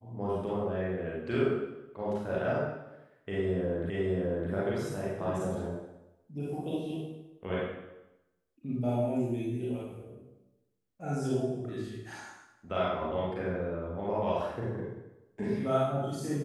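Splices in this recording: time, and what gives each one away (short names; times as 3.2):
3.9 repeat of the last 0.61 s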